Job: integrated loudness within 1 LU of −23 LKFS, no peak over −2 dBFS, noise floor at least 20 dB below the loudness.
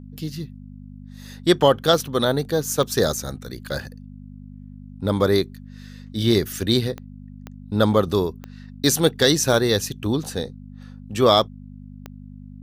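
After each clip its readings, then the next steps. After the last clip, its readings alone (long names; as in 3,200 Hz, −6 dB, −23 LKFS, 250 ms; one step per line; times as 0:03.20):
number of clicks 5; mains hum 50 Hz; hum harmonics up to 250 Hz; level of the hum −38 dBFS; integrated loudness −21.0 LKFS; sample peak −3.5 dBFS; target loudness −23.0 LKFS
→ click removal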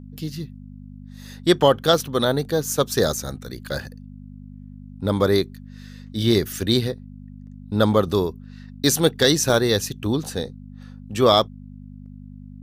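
number of clicks 0; mains hum 50 Hz; hum harmonics up to 250 Hz; level of the hum −37 dBFS
→ hum removal 50 Hz, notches 5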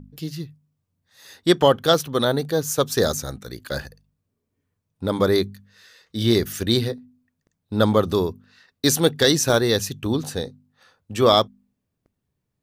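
mains hum none found; integrated loudness −21.0 LKFS; sample peak −3.0 dBFS; target loudness −23.0 LKFS
→ level −2 dB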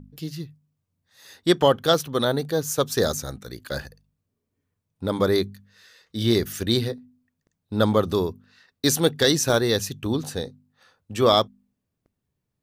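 integrated loudness −23.0 LKFS; sample peak −5.0 dBFS; background noise floor −80 dBFS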